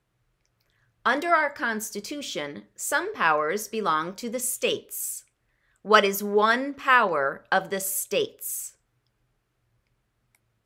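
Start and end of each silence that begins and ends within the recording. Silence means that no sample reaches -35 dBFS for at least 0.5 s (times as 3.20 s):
5.19–5.85 s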